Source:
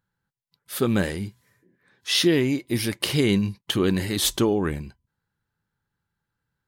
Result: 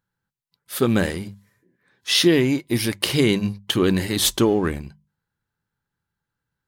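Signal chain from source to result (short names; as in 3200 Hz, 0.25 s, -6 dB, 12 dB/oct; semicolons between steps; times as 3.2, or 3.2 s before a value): notches 50/100/150/200 Hz; in parallel at -3 dB: crossover distortion -37.5 dBFS; on the sum: gain -1 dB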